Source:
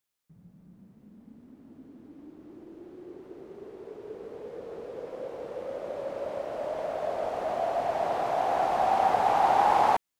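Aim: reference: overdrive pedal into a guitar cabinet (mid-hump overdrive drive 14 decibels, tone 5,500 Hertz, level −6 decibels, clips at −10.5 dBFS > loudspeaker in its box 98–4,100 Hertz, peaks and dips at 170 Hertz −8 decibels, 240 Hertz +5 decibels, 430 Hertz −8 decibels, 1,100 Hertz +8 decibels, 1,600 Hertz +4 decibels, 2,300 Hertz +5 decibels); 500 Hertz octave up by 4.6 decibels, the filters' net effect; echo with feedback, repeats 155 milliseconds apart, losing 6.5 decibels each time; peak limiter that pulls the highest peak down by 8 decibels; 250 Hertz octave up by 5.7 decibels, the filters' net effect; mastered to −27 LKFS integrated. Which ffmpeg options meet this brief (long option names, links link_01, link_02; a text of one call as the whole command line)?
ffmpeg -i in.wav -filter_complex "[0:a]equalizer=frequency=250:width_type=o:gain=4.5,equalizer=frequency=500:width_type=o:gain=7,alimiter=limit=-15dB:level=0:latency=1,aecho=1:1:155|310|465|620|775|930:0.473|0.222|0.105|0.0491|0.0231|0.0109,asplit=2[link_01][link_02];[link_02]highpass=frequency=720:poles=1,volume=14dB,asoftclip=type=tanh:threshold=-10.5dB[link_03];[link_01][link_03]amix=inputs=2:normalize=0,lowpass=frequency=5500:poles=1,volume=-6dB,highpass=98,equalizer=frequency=170:width_type=q:width=4:gain=-8,equalizer=frequency=240:width_type=q:width=4:gain=5,equalizer=frequency=430:width_type=q:width=4:gain=-8,equalizer=frequency=1100:width_type=q:width=4:gain=8,equalizer=frequency=1600:width_type=q:width=4:gain=4,equalizer=frequency=2300:width_type=q:width=4:gain=5,lowpass=frequency=4100:width=0.5412,lowpass=frequency=4100:width=1.3066,volume=-6.5dB" out.wav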